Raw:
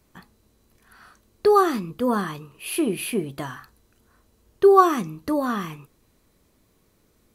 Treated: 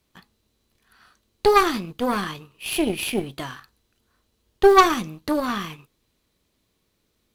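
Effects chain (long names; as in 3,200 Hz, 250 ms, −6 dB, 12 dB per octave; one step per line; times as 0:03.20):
mu-law and A-law mismatch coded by A
parametric band 3,500 Hz +8 dB 1.3 octaves
harmonic generator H 6 −15 dB, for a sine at −2 dBFS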